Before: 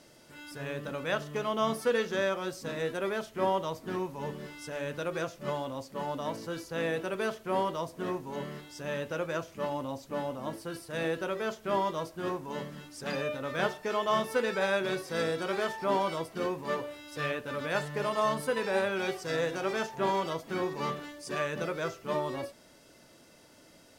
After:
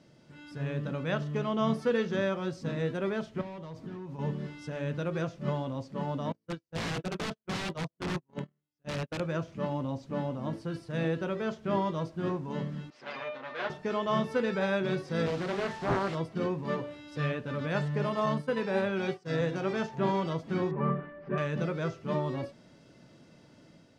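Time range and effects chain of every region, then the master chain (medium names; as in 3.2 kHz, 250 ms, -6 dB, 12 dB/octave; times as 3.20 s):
3.41–4.19 s: overload inside the chain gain 30 dB + compression 12:1, threshold -41 dBFS
6.32–9.20 s: gate -36 dBFS, range -44 dB + integer overflow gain 28 dB
12.90–13.70 s: comb filter that takes the minimum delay 8.3 ms + band-pass 530–3900 Hz
15.26–16.15 s: one-bit delta coder 64 kbps, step -36 dBFS + loudspeaker Doppler distortion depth 0.76 ms
18.26–19.41 s: high-pass 96 Hz + expander -33 dBFS
20.71–21.38 s: CVSD coder 64 kbps + low-pass 2 kHz 24 dB/octave + comb 5.1 ms, depth 66%
whole clip: low-pass 5.3 kHz 12 dB/octave; peaking EQ 150 Hz +12.5 dB 1.8 oct; level rider gain up to 3.5 dB; trim -6.5 dB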